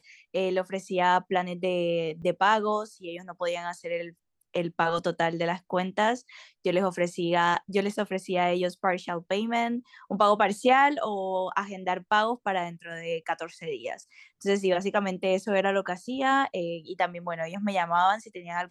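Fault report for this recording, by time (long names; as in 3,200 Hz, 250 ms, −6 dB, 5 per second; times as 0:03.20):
0:02.22–0:02.23: drop-out 6.6 ms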